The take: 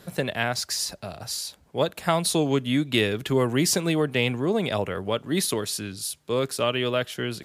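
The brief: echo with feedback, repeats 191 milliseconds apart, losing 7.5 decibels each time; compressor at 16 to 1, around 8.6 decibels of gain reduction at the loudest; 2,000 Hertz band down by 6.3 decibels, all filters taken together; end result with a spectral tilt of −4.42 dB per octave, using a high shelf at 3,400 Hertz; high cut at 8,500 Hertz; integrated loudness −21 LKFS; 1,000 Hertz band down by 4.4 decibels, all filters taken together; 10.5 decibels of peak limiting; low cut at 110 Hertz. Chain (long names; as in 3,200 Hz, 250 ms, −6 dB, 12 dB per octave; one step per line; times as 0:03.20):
high-pass filter 110 Hz
low-pass filter 8,500 Hz
parametric band 1,000 Hz −4 dB
parametric band 2,000 Hz −4.5 dB
high-shelf EQ 3,400 Hz −7.5 dB
downward compressor 16 to 1, threshold −27 dBFS
brickwall limiter −27.5 dBFS
repeating echo 191 ms, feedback 42%, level −7.5 dB
level +15 dB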